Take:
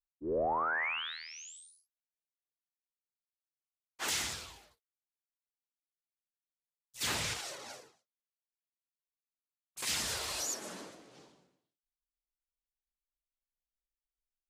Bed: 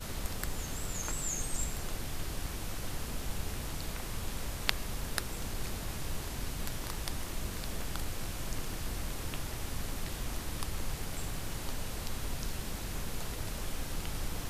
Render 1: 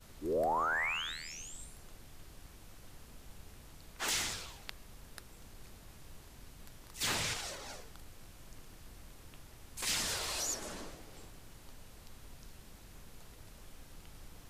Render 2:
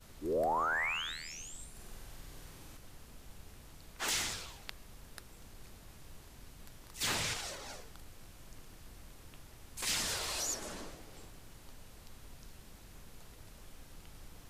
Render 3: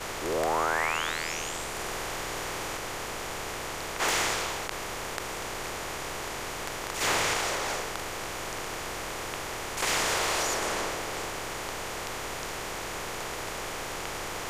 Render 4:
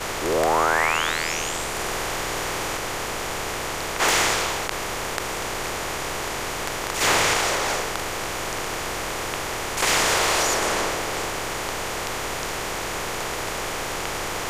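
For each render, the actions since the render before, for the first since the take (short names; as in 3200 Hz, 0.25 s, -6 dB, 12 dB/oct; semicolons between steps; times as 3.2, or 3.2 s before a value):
add bed -16 dB
1.7–2.77 flutter echo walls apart 8.4 m, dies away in 1.2 s
per-bin compression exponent 0.4; ending taper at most 190 dB/s
gain +7 dB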